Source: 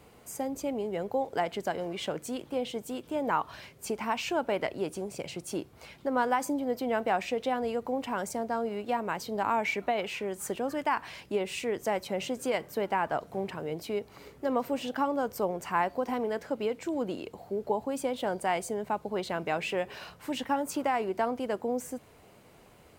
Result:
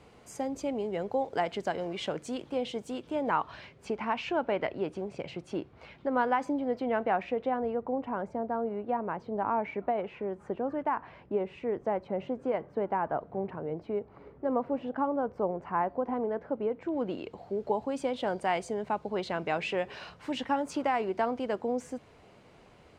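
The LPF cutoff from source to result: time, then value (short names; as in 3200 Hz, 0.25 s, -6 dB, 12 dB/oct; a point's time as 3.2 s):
2.83 s 6300 Hz
4.02 s 2900 Hz
6.7 s 2900 Hz
7.87 s 1200 Hz
16.74 s 1200 Hz
17.04 s 3000 Hz
17.58 s 5400 Hz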